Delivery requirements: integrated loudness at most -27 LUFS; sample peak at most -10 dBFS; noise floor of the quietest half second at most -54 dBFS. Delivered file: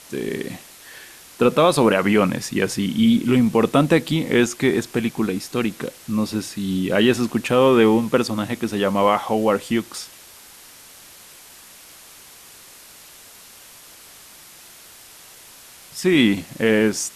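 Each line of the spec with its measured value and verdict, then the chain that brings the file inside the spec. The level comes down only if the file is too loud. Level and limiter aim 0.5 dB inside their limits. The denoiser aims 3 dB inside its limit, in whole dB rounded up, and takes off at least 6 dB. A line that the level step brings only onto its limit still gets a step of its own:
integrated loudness -19.5 LUFS: fail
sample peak -4.5 dBFS: fail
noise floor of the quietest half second -45 dBFS: fail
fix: noise reduction 6 dB, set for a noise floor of -45 dBFS; trim -8 dB

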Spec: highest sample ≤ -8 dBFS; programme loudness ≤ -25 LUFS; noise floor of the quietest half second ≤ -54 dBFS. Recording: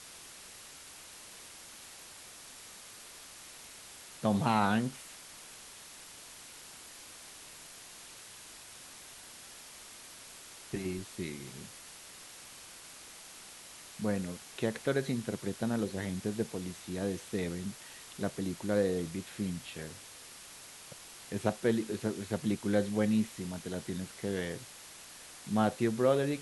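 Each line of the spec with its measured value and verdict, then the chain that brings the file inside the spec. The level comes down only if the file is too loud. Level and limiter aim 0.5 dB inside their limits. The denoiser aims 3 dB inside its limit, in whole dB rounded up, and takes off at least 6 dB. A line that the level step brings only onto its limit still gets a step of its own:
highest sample -12.5 dBFS: pass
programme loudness -34.0 LUFS: pass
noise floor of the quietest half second -51 dBFS: fail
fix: noise reduction 6 dB, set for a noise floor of -51 dBFS

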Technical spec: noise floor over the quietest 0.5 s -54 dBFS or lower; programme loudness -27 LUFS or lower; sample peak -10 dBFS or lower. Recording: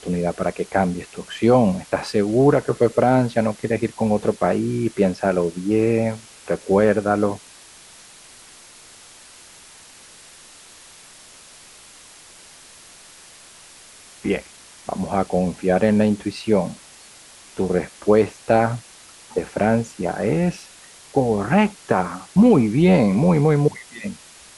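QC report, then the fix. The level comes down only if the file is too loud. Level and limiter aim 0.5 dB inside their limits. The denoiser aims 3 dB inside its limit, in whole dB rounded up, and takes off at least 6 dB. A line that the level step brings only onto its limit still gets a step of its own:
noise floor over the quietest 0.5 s -46 dBFS: fail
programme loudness -20.0 LUFS: fail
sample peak -5.0 dBFS: fail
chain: noise reduction 6 dB, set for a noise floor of -46 dBFS; trim -7.5 dB

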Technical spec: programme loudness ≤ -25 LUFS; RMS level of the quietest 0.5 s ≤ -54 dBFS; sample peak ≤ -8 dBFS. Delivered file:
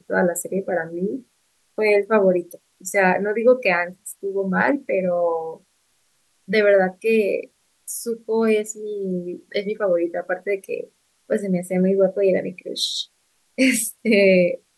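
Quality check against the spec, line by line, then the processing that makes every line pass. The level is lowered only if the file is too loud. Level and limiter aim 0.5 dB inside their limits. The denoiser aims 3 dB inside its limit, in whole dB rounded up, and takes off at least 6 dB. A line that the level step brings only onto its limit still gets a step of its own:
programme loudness -21.0 LUFS: fail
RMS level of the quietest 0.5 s -65 dBFS: pass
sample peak -6.0 dBFS: fail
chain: trim -4.5 dB

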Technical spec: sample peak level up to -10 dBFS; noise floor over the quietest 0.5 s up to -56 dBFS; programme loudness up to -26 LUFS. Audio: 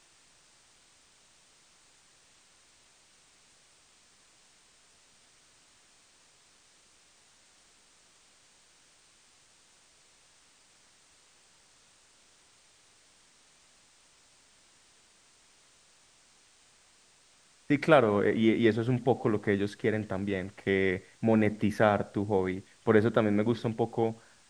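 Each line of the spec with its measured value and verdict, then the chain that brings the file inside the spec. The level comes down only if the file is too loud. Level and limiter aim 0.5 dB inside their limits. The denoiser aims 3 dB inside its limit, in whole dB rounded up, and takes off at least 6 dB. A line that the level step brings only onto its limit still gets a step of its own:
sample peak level -6.5 dBFS: fail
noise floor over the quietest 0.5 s -62 dBFS: pass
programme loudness -28.0 LUFS: pass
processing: peak limiter -10.5 dBFS

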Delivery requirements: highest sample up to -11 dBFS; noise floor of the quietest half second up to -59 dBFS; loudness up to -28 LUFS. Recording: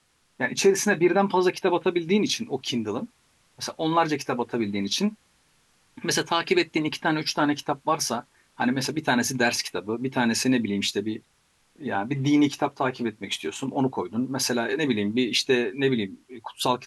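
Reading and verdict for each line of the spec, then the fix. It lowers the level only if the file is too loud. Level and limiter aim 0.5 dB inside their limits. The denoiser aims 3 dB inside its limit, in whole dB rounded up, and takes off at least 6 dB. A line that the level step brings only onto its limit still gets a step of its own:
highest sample -7.5 dBFS: fail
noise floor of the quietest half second -65 dBFS: pass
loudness -25.0 LUFS: fail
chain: trim -3.5 dB; peak limiter -11.5 dBFS

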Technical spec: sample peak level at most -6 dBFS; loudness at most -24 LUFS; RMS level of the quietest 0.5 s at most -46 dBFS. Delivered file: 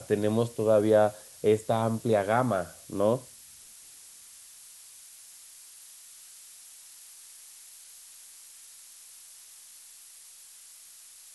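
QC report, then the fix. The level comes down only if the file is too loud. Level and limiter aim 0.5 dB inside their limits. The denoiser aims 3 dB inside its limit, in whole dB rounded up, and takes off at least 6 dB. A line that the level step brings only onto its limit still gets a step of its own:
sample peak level -10.5 dBFS: pass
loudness -26.5 LUFS: pass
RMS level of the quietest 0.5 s -51 dBFS: pass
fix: none needed

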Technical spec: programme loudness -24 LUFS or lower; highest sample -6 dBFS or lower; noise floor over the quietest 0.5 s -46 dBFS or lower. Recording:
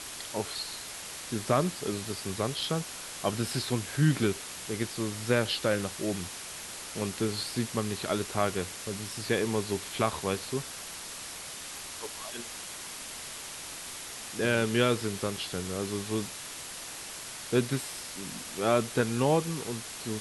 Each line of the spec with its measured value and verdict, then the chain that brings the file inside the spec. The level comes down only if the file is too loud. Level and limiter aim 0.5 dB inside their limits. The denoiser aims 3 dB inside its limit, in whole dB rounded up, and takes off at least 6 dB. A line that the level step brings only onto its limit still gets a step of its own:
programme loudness -31.5 LUFS: pass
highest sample -11.0 dBFS: pass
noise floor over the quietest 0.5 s -42 dBFS: fail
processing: noise reduction 7 dB, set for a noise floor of -42 dBFS

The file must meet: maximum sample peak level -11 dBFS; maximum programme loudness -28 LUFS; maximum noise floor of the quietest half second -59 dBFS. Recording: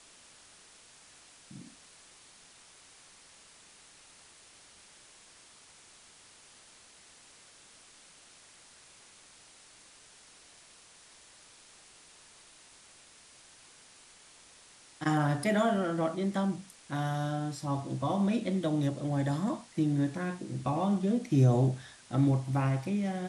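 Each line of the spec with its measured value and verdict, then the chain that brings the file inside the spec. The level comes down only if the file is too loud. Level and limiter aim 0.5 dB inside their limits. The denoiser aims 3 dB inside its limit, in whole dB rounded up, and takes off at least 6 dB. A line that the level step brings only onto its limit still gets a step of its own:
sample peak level -14.0 dBFS: pass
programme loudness -30.5 LUFS: pass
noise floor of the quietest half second -57 dBFS: fail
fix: noise reduction 6 dB, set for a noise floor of -57 dBFS

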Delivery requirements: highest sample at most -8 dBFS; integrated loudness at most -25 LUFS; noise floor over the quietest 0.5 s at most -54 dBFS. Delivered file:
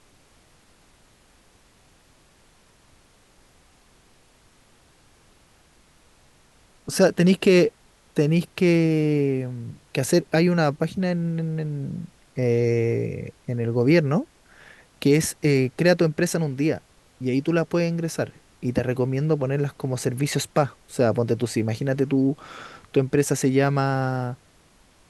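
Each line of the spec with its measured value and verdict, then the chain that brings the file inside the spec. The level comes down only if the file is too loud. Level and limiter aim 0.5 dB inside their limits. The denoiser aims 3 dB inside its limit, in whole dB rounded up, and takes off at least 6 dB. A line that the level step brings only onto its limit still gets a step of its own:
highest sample -5.5 dBFS: fail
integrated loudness -23.0 LUFS: fail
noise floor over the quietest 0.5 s -57 dBFS: pass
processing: trim -2.5 dB; peak limiter -8.5 dBFS

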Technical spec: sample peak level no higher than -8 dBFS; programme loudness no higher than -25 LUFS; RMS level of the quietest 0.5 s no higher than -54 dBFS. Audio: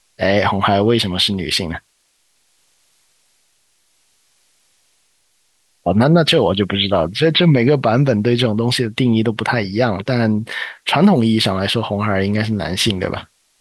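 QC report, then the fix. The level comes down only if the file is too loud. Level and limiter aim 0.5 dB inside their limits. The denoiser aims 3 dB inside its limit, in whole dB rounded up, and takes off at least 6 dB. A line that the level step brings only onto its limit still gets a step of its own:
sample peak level -3.5 dBFS: fail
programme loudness -16.0 LUFS: fail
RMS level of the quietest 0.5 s -62 dBFS: pass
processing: trim -9.5 dB

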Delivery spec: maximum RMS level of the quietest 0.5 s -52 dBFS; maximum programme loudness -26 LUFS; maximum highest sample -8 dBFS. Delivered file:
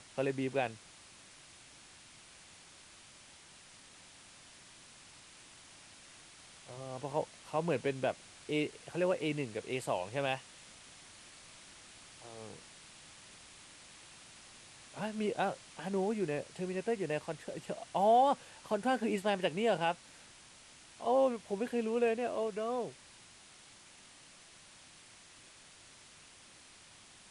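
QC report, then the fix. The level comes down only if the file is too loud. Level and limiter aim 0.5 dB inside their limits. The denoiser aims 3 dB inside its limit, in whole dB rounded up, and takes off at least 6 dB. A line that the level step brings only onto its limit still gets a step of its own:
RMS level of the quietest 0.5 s -58 dBFS: pass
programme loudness -34.5 LUFS: pass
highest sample -18.0 dBFS: pass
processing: none needed

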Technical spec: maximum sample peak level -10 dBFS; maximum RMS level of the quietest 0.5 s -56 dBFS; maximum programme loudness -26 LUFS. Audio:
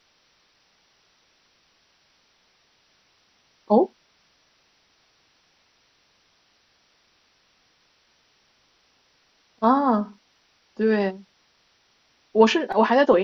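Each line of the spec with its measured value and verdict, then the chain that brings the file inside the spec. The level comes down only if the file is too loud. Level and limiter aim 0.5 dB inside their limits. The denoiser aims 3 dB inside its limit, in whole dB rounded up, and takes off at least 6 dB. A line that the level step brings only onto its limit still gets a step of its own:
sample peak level -4.5 dBFS: fail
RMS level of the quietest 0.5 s -64 dBFS: pass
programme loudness -21.5 LUFS: fail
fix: trim -5 dB; peak limiter -10.5 dBFS

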